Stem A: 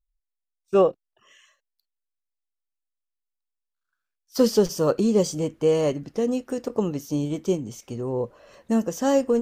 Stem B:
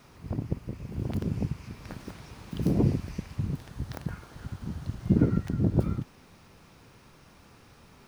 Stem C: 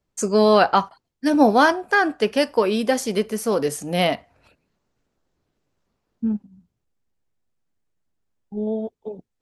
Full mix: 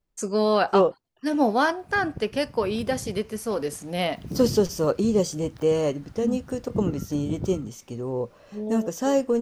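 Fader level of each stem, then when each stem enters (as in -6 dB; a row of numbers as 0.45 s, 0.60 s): -1.5 dB, -7.5 dB, -6.0 dB; 0.00 s, 1.65 s, 0.00 s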